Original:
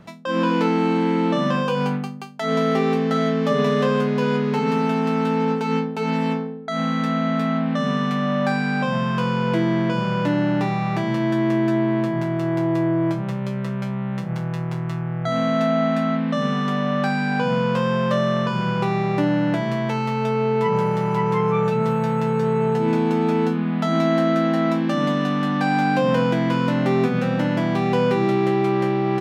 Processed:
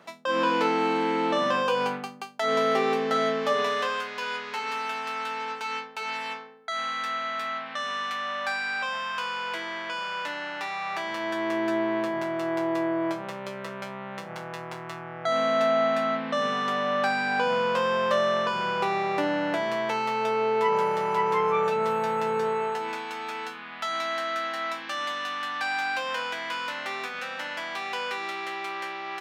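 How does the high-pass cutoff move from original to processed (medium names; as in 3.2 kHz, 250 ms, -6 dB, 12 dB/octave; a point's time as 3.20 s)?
3.31 s 460 Hz
4.03 s 1.2 kHz
10.67 s 1.2 kHz
11.71 s 480 Hz
22.40 s 480 Hz
23.07 s 1.3 kHz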